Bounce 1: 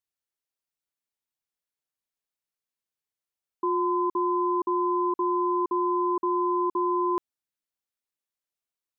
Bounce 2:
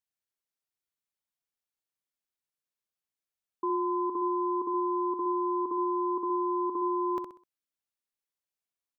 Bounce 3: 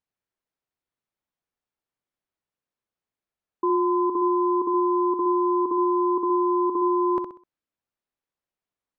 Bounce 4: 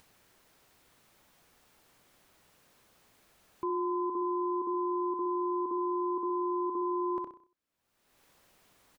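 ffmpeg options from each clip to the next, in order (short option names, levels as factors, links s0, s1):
-af "aecho=1:1:64|128|192|256:0.473|0.161|0.0547|0.0186,volume=0.631"
-af "lowpass=f=1200:p=1,volume=2.66"
-filter_complex "[0:a]asplit=2[s0][s1];[s1]adelay=93.29,volume=0.158,highshelf=f=4000:g=-2.1[s2];[s0][s2]amix=inputs=2:normalize=0,acompressor=mode=upward:threshold=0.0251:ratio=2.5,alimiter=limit=0.112:level=0:latency=1:release=14,volume=0.447"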